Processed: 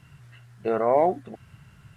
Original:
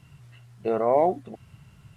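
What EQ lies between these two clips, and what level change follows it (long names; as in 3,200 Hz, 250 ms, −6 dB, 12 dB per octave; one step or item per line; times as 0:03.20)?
parametric band 1,600 Hz +7.5 dB 0.64 octaves
0.0 dB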